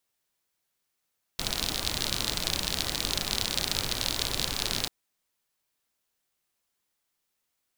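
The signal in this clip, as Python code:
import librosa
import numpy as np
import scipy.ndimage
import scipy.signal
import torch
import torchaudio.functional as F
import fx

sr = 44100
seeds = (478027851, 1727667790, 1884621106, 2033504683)

y = fx.rain(sr, seeds[0], length_s=3.49, drops_per_s=50.0, hz=4000.0, bed_db=-2.0)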